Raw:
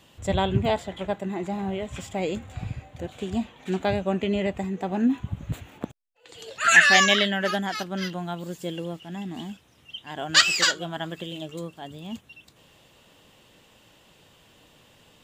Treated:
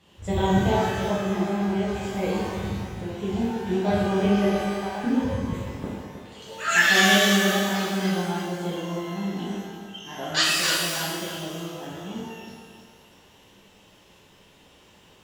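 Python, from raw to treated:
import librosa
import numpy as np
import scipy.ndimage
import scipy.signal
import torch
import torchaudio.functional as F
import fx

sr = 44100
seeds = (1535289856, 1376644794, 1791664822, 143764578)

p1 = fx.dynamic_eq(x, sr, hz=1900.0, q=0.72, threshold_db=-32.0, ratio=4.0, max_db=-4)
p2 = fx.highpass(p1, sr, hz=630.0, slope=24, at=(4.6, 5.04))
p3 = fx.high_shelf(p2, sr, hz=7300.0, db=-9.0)
p4 = p3 + fx.echo_feedback(p3, sr, ms=314, feedback_pct=31, wet_db=-9, dry=0)
p5 = fx.rev_shimmer(p4, sr, seeds[0], rt60_s=1.1, semitones=12, shimmer_db=-8, drr_db=-7.0)
y = p5 * 10.0 ** (-6.5 / 20.0)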